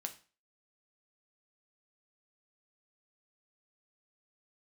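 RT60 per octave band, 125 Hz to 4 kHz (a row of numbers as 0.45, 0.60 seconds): 0.35, 0.35, 0.35, 0.35, 0.35, 0.35 seconds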